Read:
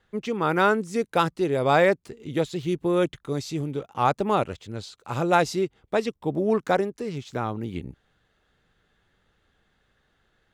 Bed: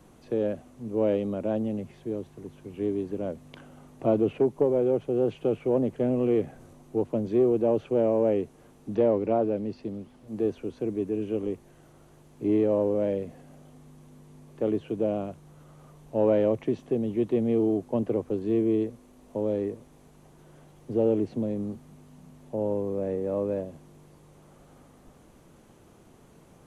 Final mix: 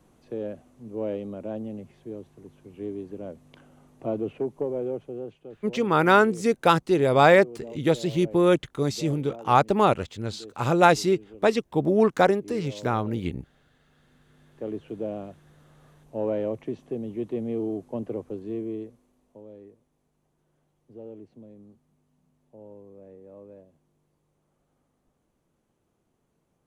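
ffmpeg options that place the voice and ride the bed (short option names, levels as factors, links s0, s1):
-filter_complex "[0:a]adelay=5500,volume=1.41[s0];[1:a]volume=2.24,afade=t=out:st=4.86:d=0.57:silence=0.251189,afade=t=in:st=13.83:d=1.08:silence=0.237137,afade=t=out:st=18.19:d=1.25:silence=0.211349[s1];[s0][s1]amix=inputs=2:normalize=0"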